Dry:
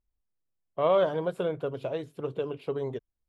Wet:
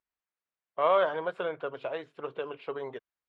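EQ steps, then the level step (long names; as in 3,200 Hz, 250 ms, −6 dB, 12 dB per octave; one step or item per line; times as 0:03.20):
resonant band-pass 1,600 Hz, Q 0.99
high-frequency loss of the air 59 metres
+6.5 dB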